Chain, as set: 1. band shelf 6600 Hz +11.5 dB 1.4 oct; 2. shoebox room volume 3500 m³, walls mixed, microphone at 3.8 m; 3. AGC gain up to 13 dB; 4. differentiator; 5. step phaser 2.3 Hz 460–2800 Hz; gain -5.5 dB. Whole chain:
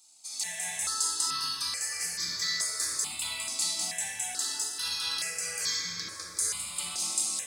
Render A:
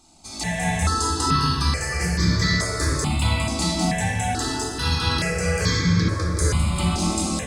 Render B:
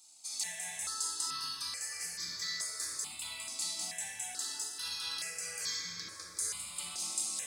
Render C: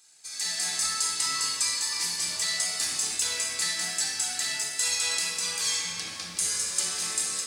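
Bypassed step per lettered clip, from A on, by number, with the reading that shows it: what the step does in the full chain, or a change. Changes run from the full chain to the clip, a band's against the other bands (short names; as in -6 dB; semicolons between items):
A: 4, 125 Hz band +21.5 dB; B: 3, loudness change -6.5 LU; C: 5, 1 kHz band -1.5 dB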